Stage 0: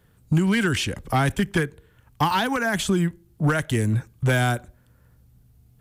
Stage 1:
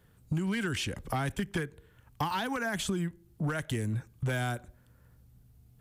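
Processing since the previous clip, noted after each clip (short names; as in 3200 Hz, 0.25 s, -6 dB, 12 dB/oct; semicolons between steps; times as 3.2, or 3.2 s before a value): compressor 2.5:1, threshold -28 dBFS, peak gain reduction 8.5 dB; gain -3.5 dB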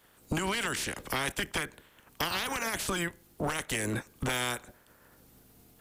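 spectral limiter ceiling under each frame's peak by 23 dB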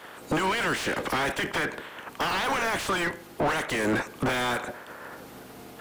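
overdrive pedal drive 31 dB, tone 1300 Hz, clips at -16 dBFS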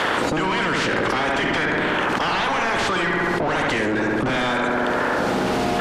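LPF 5900 Hz 12 dB/oct; on a send: darkening echo 69 ms, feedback 68%, low-pass 2900 Hz, level -4.5 dB; on the sum: fast leveller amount 100%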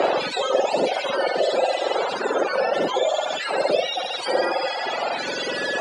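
spectrum mirrored in octaves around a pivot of 1100 Hz; speaker cabinet 390–7100 Hz, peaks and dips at 540 Hz +10 dB, 1100 Hz -5 dB, 2100 Hz -4 dB, 6000 Hz -10 dB; reverb removal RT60 1.9 s; gain +3 dB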